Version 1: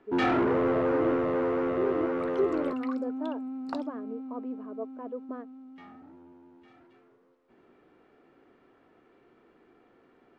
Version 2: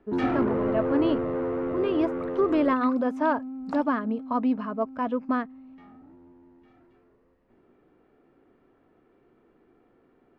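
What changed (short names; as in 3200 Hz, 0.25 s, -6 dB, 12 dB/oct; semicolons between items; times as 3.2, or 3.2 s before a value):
speech: remove band-pass 400 Hz, Q 3.1; first sound -3.5 dB; master: add tilt -2 dB/oct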